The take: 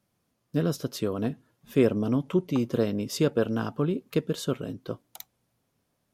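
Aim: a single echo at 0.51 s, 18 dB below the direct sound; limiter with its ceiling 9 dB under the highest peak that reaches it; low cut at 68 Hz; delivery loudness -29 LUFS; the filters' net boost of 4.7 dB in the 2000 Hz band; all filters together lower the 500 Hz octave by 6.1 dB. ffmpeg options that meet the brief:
-af "highpass=68,equalizer=f=500:t=o:g=-8,equalizer=f=2k:t=o:g=7,alimiter=limit=-20dB:level=0:latency=1,aecho=1:1:510:0.126,volume=4dB"

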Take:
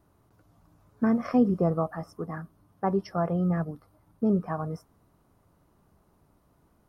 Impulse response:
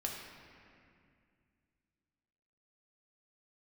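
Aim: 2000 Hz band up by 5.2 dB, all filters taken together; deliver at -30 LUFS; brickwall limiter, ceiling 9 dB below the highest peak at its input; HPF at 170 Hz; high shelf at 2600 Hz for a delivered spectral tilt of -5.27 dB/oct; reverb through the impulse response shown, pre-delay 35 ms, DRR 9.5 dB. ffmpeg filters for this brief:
-filter_complex "[0:a]highpass=170,equalizer=f=2k:t=o:g=3.5,highshelf=f=2.6k:g=8.5,alimiter=limit=-21dB:level=0:latency=1,asplit=2[a][b];[1:a]atrim=start_sample=2205,adelay=35[c];[b][c]afir=irnorm=-1:irlink=0,volume=-11dB[d];[a][d]amix=inputs=2:normalize=0,volume=2.5dB"

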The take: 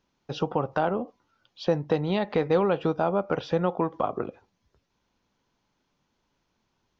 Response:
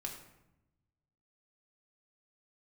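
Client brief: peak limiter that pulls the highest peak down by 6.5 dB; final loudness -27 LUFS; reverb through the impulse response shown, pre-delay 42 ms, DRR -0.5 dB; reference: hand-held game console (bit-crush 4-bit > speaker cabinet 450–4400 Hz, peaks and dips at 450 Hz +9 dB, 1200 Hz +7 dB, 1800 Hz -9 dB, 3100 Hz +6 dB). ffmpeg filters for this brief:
-filter_complex "[0:a]alimiter=limit=-17.5dB:level=0:latency=1,asplit=2[a][b];[1:a]atrim=start_sample=2205,adelay=42[c];[b][c]afir=irnorm=-1:irlink=0,volume=2dB[d];[a][d]amix=inputs=2:normalize=0,acrusher=bits=3:mix=0:aa=0.000001,highpass=450,equalizer=f=450:t=q:w=4:g=9,equalizer=f=1.2k:t=q:w=4:g=7,equalizer=f=1.8k:t=q:w=4:g=-9,equalizer=f=3.1k:t=q:w=4:g=6,lowpass=f=4.4k:w=0.5412,lowpass=f=4.4k:w=1.3066,volume=-2dB"

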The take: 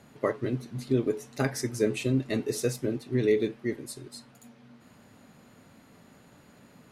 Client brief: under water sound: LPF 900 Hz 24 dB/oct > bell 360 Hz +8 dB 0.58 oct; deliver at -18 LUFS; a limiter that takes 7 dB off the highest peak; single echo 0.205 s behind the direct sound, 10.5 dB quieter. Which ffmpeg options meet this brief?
-af "alimiter=limit=-19.5dB:level=0:latency=1,lowpass=f=900:w=0.5412,lowpass=f=900:w=1.3066,equalizer=f=360:t=o:w=0.58:g=8,aecho=1:1:205:0.299,volume=9.5dB"

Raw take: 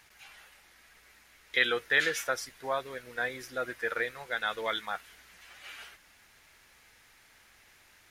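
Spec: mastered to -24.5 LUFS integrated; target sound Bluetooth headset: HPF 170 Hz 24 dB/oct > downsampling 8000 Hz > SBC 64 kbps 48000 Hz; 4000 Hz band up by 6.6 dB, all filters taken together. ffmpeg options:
-af "highpass=f=170:w=0.5412,highpass=f=170:w=1.3066,equalizer=f=4k:t=o:g=8,aresample=8000,aresample=44100,volume=5dB" -ar 48000 -c:a sbc -b:a 64k

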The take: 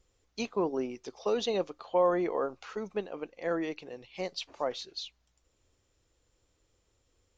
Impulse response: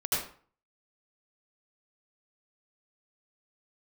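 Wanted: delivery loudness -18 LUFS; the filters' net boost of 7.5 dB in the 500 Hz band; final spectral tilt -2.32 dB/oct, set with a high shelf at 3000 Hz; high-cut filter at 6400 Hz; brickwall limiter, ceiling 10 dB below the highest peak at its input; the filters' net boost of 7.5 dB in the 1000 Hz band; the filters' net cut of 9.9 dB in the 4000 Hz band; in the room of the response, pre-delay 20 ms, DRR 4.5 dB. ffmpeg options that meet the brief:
-filter_complex "[0:a]lowpass=6.4k,equalizer=f=500:t=o:g=7,equalizer=f=1k:t=o:g=8,highshelf=f=3k:g=-7,equalizer=f=4k:t=o:g=-6.5,alimiter=limit=-17.5dB:level=0:latency=1,asplit=2[a][b];[1:a]atrim=start_sample=2205,adelay=20[c];[b][c]afir=irnorm=-1:irlink=0,volume=-13dB[d];[a][d]amix=inputs=2:normalize=0,volume=11dB"

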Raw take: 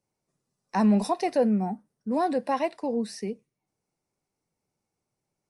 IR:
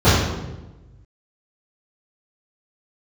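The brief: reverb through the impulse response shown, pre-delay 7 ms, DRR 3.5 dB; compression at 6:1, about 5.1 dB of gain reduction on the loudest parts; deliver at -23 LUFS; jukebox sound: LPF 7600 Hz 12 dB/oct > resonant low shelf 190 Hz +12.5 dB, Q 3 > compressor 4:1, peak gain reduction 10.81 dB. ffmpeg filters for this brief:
-filter_complex "[0:a]acompressor=threshold=-22dB:ratio=6,asplit=2[a][b];[1:a]atrim=start_sample=2205,adelay=7[c];[b][c]afir=irnorm=-1:irlink=0,volume=-29.5dB[d];[a][d]amix=inputs=2:normalize=0,lowpass=7.6k,lowshelf=f=190:t=q:w=3:g=12.5,acompressor=threshold=-25dB:ratio=4,volume=6.5dB"

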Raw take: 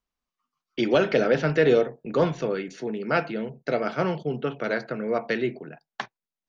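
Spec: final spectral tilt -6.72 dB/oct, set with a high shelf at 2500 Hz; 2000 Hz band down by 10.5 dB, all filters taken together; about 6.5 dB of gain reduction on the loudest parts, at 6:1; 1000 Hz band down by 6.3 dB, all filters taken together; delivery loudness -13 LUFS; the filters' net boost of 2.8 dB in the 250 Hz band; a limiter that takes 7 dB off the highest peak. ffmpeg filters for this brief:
-af "equalizer=f=250:t=o:g=4.5,equalizer=f=1k:t=o:g=-6,equalizer=f=2k:t=o:g=-8,highshelf=f=2.5k:g=-8.5,acompressor=threshold=-22dB:ratio=6,volume=18.5dB,alimiter=limit=-2.5dB:level=0:latency=1"

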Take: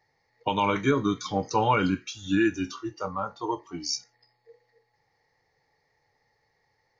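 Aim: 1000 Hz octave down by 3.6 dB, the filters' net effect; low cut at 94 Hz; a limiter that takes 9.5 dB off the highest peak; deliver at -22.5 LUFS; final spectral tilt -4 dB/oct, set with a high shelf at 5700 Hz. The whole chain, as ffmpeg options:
-af "highpass=94,equalizer=f=1k:t=o:g=-4.5,highshelf=f=5.7k:g=8.5,volume=9.5dB,alimiter=limit=-11dB:level=0:latency=1"

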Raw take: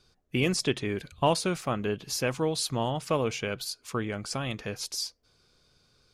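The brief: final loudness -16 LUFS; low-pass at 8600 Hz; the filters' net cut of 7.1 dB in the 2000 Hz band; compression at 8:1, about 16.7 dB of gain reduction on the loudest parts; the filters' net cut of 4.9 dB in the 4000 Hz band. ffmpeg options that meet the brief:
-af "lowpass=8.6k,equalizer=f=2k:t=o:g=-8.5,equalizer=f=4k:t=o:g=-4,acompressor=threshold=-38dB:ratio=8,volume=26.5dB"

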